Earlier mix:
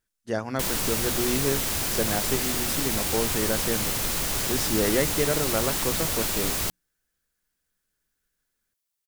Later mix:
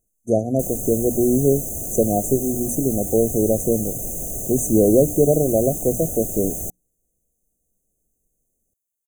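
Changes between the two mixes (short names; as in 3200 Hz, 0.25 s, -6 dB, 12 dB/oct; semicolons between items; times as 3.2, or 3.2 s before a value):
speech +10.0 dB; master: add brick-wall FIR band-stop 760–6000 Hz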